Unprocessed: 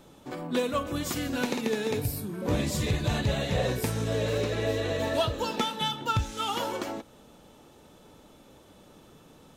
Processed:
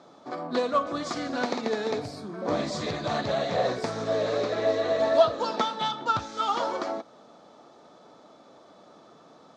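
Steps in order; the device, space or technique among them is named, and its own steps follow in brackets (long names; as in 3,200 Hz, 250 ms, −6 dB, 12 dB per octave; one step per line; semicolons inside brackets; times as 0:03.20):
full-range speaker at full volume (highs frequency-modulated by the lows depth 0.22 ms; loudspeaker in its box 210–6,200 Hz, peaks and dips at 680 Hz +10 dB, 1,200 Hz +8 dB, 2,800 Hz −9 dB, 4,500 Hz +4 dB)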